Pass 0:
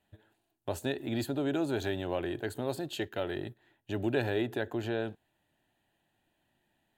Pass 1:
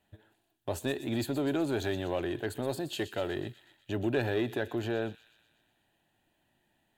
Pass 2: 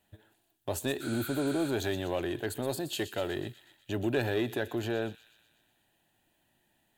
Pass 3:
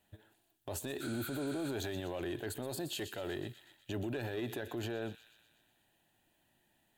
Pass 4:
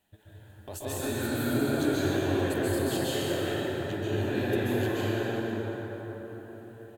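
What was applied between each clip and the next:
in parallel at -4.5 dB: saturation -29.5 dBFS, distortion -11 dB; on the sum: feedback echo behind a high-pass 123 ms, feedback 61%, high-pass 2.9 kHz, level -10.5 dB; trim -2 dB
spectral replace 1.04–1.67 s, 1.2–11 kHz after; treble shelf 5.6 kHz +8 dB
peak limiter -28.5 dBFS, peak gain reduction 11 dB; trim -1.5 dB
speakerphone echo 310 ms, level -7 dB; plate-style reverb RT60 4.8 s, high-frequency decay 0.4×, pre-delay 120 ms, DRR -10 dB

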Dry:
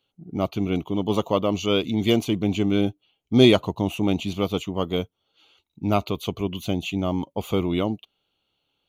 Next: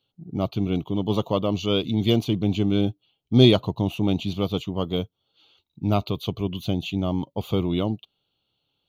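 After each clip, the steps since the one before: ten-band graphic EQ 125 Hz +7 dB, 2 kHz -6 dB, 4 kHz +7 dB, 8 kHz -9 dB; trim -2 dB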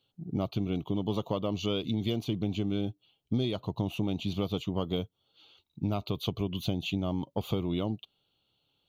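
compression 12:1, threshold -26 dBFS, peak gain reduction 17.5 dB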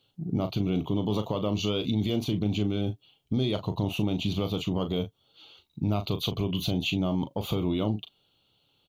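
peak limiter -24 dBFS, peak gain reduction 7.5 dB; doubling 38 ms -9.5 dB; trim +6 dB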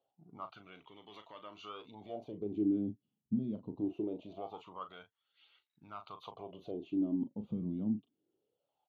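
phaser 0.36 Hz, delay 3.4 ms, feedback 30%; wah-wah 0.23 Hz 210–1900 Hz, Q 5.9; trim +1 dB

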